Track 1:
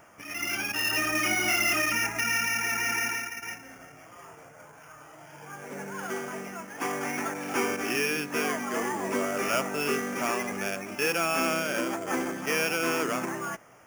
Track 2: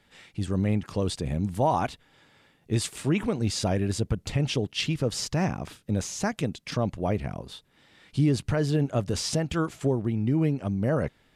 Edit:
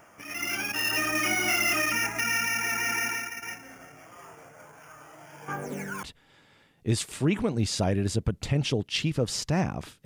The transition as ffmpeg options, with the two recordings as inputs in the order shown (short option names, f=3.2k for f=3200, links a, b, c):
-filter_complex "[0:a]asettb=1/sr,asplit=3[a][b][c];[a]atrim=end=5.484[d];[b]atrim=start=5.48:end=6.03,asetpts=PTS-STARTPTS,afade=t=in:d=0.004:c=qsin,afade=t=out:st=0.546:d=0.004:c=qsin,aphaser=in_gain=1:out_gain=1:delay=1.2:decay=0.72:speed=0.62:type=sinusoidal[e];[c]atrim=start=6.026[f];[d][e]acrossfade=d=0.004:c1=hsin:c2=qsin[g];[g][f]acrossfade=d=0.004:c1=qsin:c2=hsin,apad=whole_dur=10.05,atrim=end=10.05,atrim=end=6.032[h];[1:a]atrim=start=1.868:end=5.89[i];[h][i]acrossfade=d=0.004:c1=hsin:c2=hsin"